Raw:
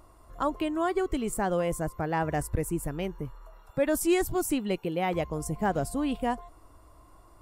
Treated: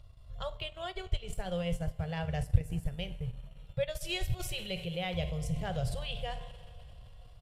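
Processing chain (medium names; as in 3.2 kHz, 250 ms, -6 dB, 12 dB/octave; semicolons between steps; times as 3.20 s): Chebyshev band-stop 120–620 Hz, order 2; resampled via 32 kHz; FFT filter 150 Hz 0 dB, 510 Hz -8 dB, 960 Hz -23 dB, 2.3 kHz -9 dB, 3.3 kHz +2 dB, 8.2 kHz -17 dB; reverberation, pre-delay 3 ms, DRR 8 dB; transient shaper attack 0 dB, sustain -8 dB, from 4.39 s sustain +5 dB; trim +5.5 dB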